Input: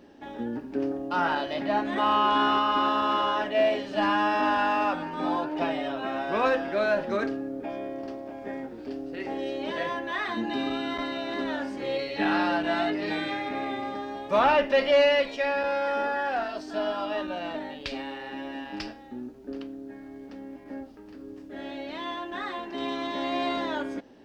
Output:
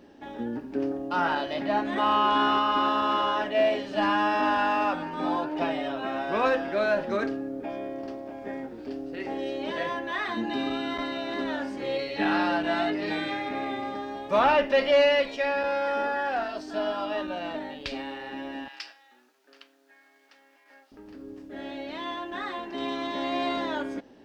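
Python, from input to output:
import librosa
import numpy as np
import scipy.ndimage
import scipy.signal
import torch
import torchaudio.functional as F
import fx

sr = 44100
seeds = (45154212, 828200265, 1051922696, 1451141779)

y = fx.highpass(x, sr, hz=1400.0, slope=12, at=(18.68, 20.92))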